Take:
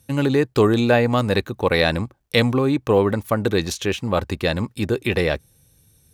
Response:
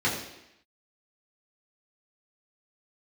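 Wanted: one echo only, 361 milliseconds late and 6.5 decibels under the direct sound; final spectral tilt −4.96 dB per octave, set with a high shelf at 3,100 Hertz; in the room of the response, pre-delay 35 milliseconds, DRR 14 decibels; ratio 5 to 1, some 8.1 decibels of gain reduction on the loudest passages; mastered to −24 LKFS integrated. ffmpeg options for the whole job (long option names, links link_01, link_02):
-filter_complex "[0:a]highshelf=frequency=3100:gain=6.5,acompressor=threshold=-20dB:ratio=5,aecho=1:1:361:0.473,asplit=2[link_01][link_02];[1:a]atrim=start_sample=2205,adelay=35[link_03];[link_02][link_03]afir=irnorm=-1:irlink=0,volume=-26.5dB[link_04];[link_01][link_04]amix=inputs=2:normalize=0"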